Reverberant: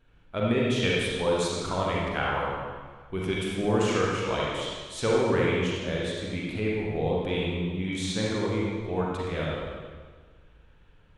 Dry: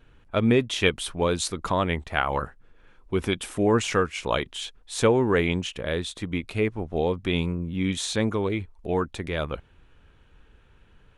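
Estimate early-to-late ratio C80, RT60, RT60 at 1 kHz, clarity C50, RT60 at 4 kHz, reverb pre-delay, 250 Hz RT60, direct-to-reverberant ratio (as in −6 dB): 0.0 dB, 1.5 s, 1.5 s, −3.0 dB, 1.4 s, 36 ms, 1.6 s, −5.0 dB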